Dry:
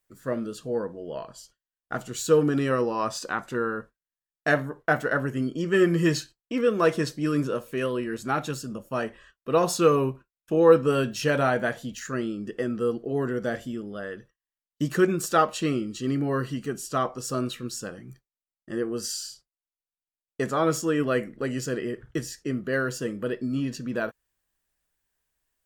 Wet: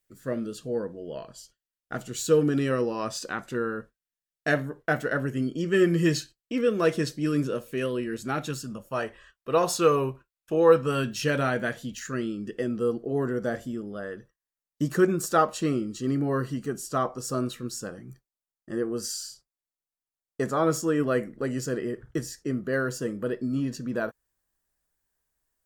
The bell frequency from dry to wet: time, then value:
bell -6.5 dB 1.1 oct
8.41 s 990 Hz
8.95 s 220 Hz
10.65 s 220 Hz
11.24 s 790 Hz
12.47 s 790 Hz
12.97 s 2800 Hz

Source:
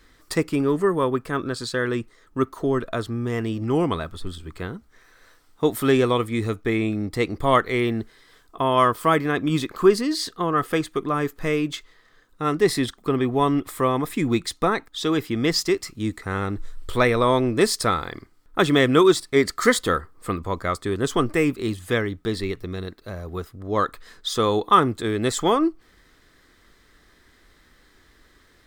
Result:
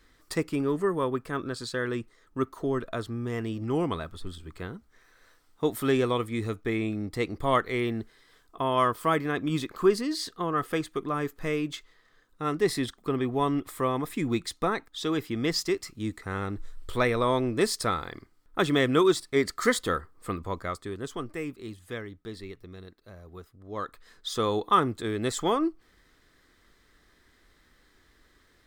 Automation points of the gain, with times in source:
20.52 s -6 dB
21.18 s -14 dB
23.64 s -14 dB
24.37 s -6 dB

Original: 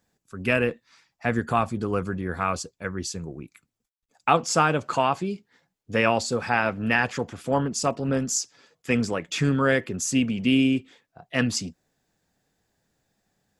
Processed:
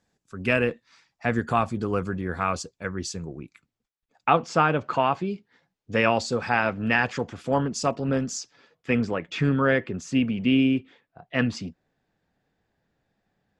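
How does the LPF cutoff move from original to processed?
3.1 s 7800 Hz
4.31 s 3200 Hz
4.99 s 3200 Hz
5.98 s 6200 Hz
7.86 s 6200 Hz
8.98 s 3100 Hz

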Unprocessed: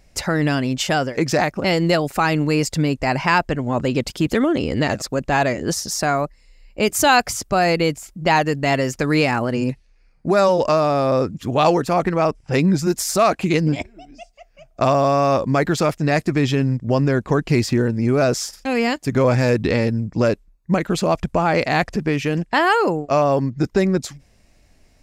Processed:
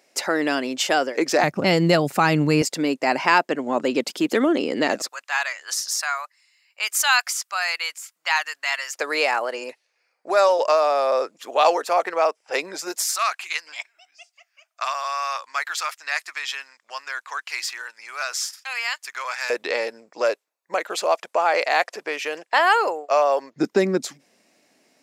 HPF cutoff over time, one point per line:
HPF 24 dB/oct
300 Hz
from 1.43 s 120 Hz
from 2.62 s 260 Hz
from 5.09 s 1100 Hz
from 8.95 s 500 Hz
from 13.05 s 1100 Hz
from 19.5 s 510 Hz
from 23.56 s 230 Hz

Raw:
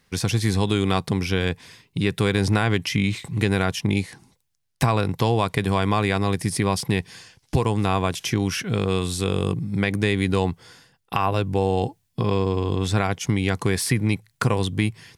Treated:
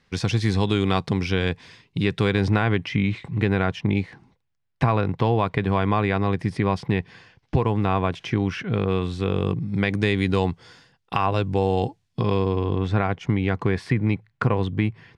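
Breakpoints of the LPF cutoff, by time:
2.12 s 4900 Hz
2.76 s 2500 Hz
9.25 s 2500 Hz
9.98 s 5500 Hz
12.21 s 5500 Hz
12.84 s 2200 Hz

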